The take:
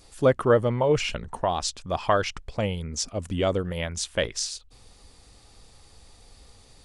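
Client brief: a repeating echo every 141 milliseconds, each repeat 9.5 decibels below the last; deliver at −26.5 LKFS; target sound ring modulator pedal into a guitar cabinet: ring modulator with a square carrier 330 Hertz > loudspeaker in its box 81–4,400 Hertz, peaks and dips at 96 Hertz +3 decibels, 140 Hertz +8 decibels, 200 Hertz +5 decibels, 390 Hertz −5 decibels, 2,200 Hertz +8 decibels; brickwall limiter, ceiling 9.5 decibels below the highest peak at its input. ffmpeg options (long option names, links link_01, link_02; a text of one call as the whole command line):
ffmpeg -i in.wav -af "alimiter=limit=-16.5dB:level=0:latency=1,aecho=1:1:141|282|423|564:0.335|0.111|0.0365|0.012,aeval=exprs='val(0)*sgn(sin(2*PI*330*n/s))':channel_layout=same,highpass=81,equalizer=frequency=96:width_type=q:width=4:gain=3,equalizer=frequency=140:width_type=q:width=4:gain=8,equalizer=frequency=200:width_type=q:width=4:gain=5,equalizer=frequency=390:width_type=q:width=4:gain=-5,equalizer=frequency=2200:width_type=q:width=4:gain=8,lowpass=frequency=4400:width=0.5412,lowpass=frequency=4400:width=1.3066" out.wav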